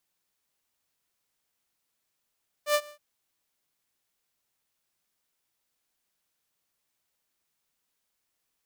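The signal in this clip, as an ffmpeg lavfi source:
-f lavfi -i "aevalsrc='0.141*(2*mod(592*t,1)-1)':d=0.322:s=44100,afade=t=in:d=0.086,afade=t=out:st=0.086:d=0.06:silence=0.0631,afade=t=out:st=0.23:d=0.092"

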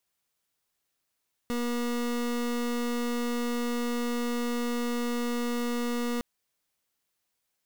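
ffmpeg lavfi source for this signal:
-f lavfi -i "aevalsrc='0.0335*(2*lt(mod(240*t,1),0.3)-1)':d=4.71:s=44100"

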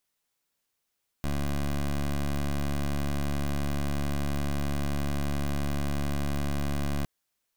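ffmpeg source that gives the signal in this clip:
-f lavfi -i "aevalsrc='0.0398*(2*lt(mod(71.5*t,1),0.16)-1)':d=5.81:s=44100"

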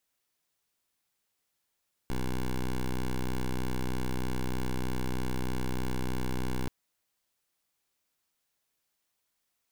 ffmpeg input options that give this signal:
-f lavfi -i "aevalsrc='0.0316*(2*lt(mod(63.2*t,1),0.1)-1)':d=4.58:s=44100"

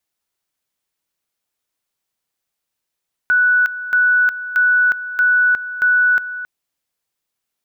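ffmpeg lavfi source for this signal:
-f lavfi -i "aevalsrc='pow(10,(-10.5-13.5*gte(mod(t,0.63),0.36))/20)*sin(2*PI*1480*t)':d=3.15:s=44100"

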